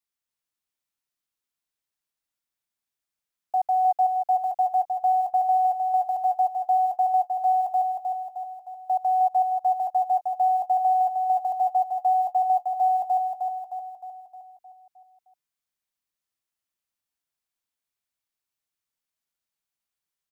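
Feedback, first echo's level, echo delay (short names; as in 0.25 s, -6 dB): 54%, -4.5 dB, 0.309 s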